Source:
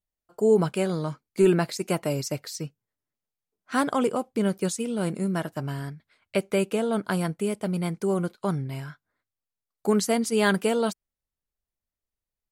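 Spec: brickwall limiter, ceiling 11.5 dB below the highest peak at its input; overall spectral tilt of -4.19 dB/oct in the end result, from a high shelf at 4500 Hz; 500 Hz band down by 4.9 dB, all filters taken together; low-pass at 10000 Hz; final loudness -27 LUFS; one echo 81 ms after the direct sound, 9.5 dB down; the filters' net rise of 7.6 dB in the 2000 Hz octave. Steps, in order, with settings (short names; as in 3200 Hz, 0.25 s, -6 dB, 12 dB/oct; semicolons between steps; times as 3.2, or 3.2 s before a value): LPF 10000 Hz; bell 500 Hz -7 dB; bell 2000 Hz +9 dB; high shelf 4500 Hz +8 dB; limiter -16.5 dBFS; echo 81 ms -9.5 dB; gain +1.5 dB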